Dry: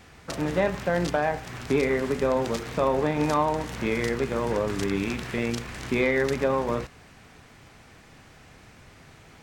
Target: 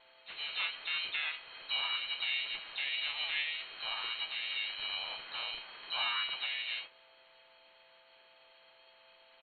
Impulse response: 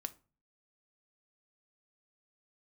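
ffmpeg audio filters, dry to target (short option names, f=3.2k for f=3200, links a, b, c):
-filter_complex "[0:a]aemphasis=mode=production:type=50fm,lowpass=f=2.8k:t=q:w=0.5098,lowpass=f=2.8k:t=q:w=0.6013,lowpass=f=2.8k:t=q:w=0.9,lowpass=f=2.8k:t=q:w=2.563,afreqshift=-3300,aeval=exprs='val(0)+0.002*sin(2*PI*660*n/s)':c=same[a];[1:a]atrim=start_sample=2205,atrim=end_sample=3528,asetrate=66150,aresample=44100[b];[a][b]afir=irnorm=-1:irlink=0,asplit=3[c][d][e];[d]asetrate=35002,aresample=44100,atempo=1.25992,volume=-4dB[f];[e]asetrate=58866,aresample=44100,atempo=0.749154,volume=-4dB[g];[c][f][g]amix=inputs=3:normalize=0,volume=-8.5dB"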